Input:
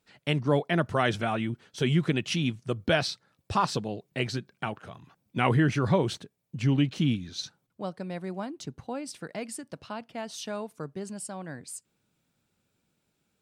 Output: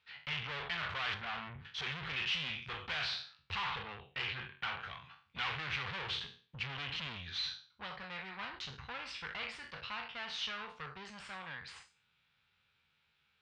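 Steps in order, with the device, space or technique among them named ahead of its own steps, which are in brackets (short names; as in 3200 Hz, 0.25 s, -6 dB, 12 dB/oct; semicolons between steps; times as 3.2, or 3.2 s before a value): spectral trails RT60 0.40 s; 1.14–1.65 EQ curve 220 Hz 0 dB, 460 Hz -6 dB, 910 Hz 0 dB, 2700 Hz -15 dB; 3.64–4.73 steep low-pass 3300 Hz 48 dB/oct; scooped metal amplifier (tube stage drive 38 dB, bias 0.55; speaker cabinet 75–3500 Hz, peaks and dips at 110 Hz -8 dB, 180 Hz -5 dB, 630 Hz -10 dB; passive tone stack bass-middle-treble 10-0-10); gain +12.5 dB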